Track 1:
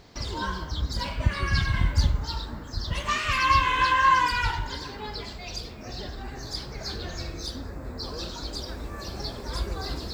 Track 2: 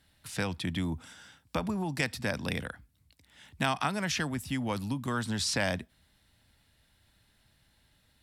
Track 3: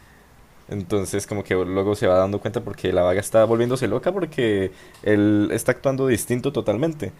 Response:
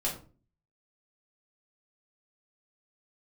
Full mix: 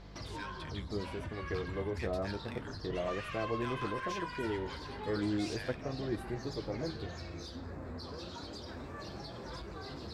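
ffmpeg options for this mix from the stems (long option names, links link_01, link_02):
-filter_complex "[0:a]highpass=frequency=68:width=0.5412,highpass=frequency=68:width=1.3066,acompressor=threshold=-36dB:ratio=5,asoftclip=type=tanh:threshold=-34dB,volume=2dB[link_01];[1:a]highpass=1300,asoftclip=type=tanh:threshold=-28.5dB,volume=-3.5dB[link_02];[2:a]equalizer=frequency=4500:width=0.67:gain=-15,bandreject=frequency=550:width=12,aeval=exprs='val(0)+0.0178*(sin(2*PI*50*n/s)+sin(2*PI*2*50*n/s)/2+sin(2*PI*3*50*n/s)/3+sin(2*PI*4*50*n/s)/4+sin(2*PI*5*50*n/s)/5)':channel_layout=same,volume=-12.5dB[link_03];[link_01][link_02][link_03]amix=inputs=3:normalize=0,aemphasis=mode=reproduction:type=50fm,flanger=delay=5.9:depth=6.7:regen=-47:speed=0.32:shape=sinusoidal"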